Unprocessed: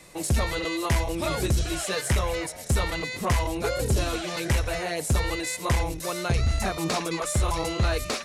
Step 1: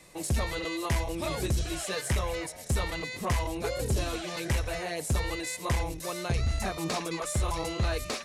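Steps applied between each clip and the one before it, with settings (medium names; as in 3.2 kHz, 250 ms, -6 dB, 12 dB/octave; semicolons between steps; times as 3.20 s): band-stop 1.4 kHz, Q 21; trim -4.5 dB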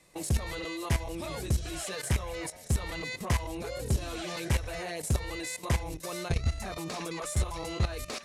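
level held to a coarse grid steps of 13 dB; trim +2.5 dB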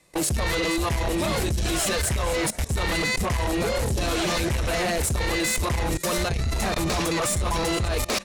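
frequency-shifting echo 472 ms, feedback 34%, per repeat -140 Hz, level -13 dB; level held to a coarse grid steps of 20 dB; sine folder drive 9 dB, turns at -26.5 dBFS; trim +6 dB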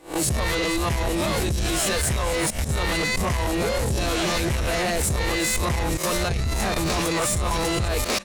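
reverse spectral sustain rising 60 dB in 0.31 s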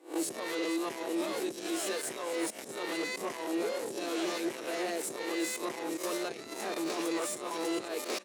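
ladder high-pass 290 Hz, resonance 50%; trim -3 dB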